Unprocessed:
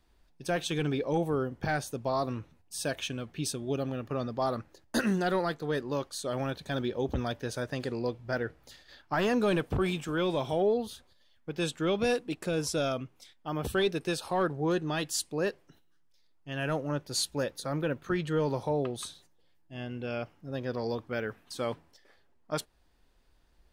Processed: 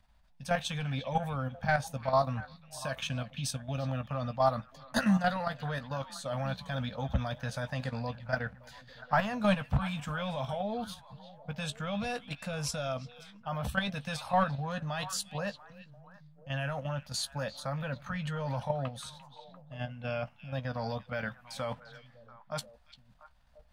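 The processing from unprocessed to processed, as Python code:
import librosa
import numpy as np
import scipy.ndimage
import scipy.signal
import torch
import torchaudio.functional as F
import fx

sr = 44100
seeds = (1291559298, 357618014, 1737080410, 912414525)

p1 = scipy.signal.sosfilt(scipy.signal.cheby1(2, 1.0, [210.0, 620.0], 'bandstop', fs=sr, output='sos'), x)
p2 = fx.high_shelf(p1, sr, hz=4700.0, db=-6.5)
p3 = fx.level_steps(p2, sr, step_db=10)
p4 = fx.doubler(p3, sr, ms=15.0, db=-10.5)
p5 = p4 + fx.echo_stepped(p4, sr, ms=345, hz=3000.0, octaves=-1.4, feedback_pct=70, wet_db=-10.5, dry=0)
y = p5 * 10.0 ** (5.5 / 20.0)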